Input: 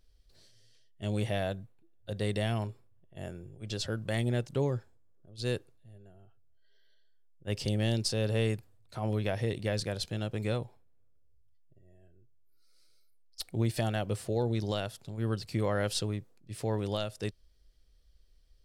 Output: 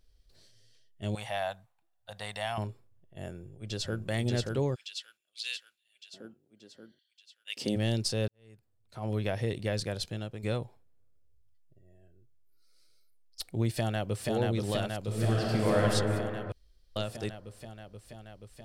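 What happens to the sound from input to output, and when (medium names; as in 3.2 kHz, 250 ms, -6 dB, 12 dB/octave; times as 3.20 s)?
1.15–2.58 s: resonant low shelf 550 Hz -13 dB, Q 3
3.29–4.01 s: echo throw 580 ms, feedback 60%, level -2 dB
4.74–7.75 s: LFO high-pass square 0.22 Hz -> 1.1 Hz 250–2800 Hz
8.28–9.17 s: fade in quadratic
10.03–10.43 s: fade out, to -9 dB
13.72–14.29 s: echo throw 480 ms, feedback 80%, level -2 dB
15.01–15.82 s: reverb throw, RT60 2.9 s, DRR -3 dB
16.52–16.96 s: room tone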